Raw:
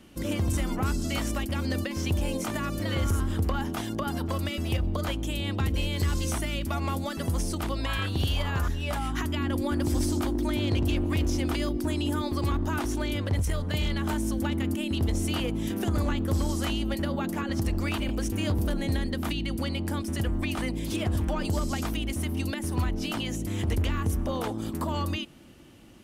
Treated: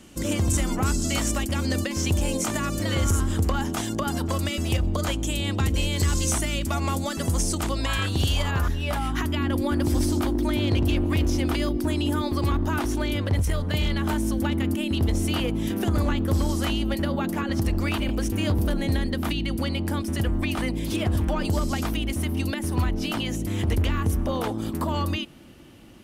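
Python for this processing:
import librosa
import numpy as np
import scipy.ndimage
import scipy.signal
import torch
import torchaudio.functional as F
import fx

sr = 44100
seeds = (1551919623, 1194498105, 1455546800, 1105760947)

y = fx.peak_eq(x, sr, hz=7300.0, db=fx.steps((0.0, 9.0), (8.51, -2.5)), octaves=0.77)
y = y * 10.0 ** (3.5 / 20.0)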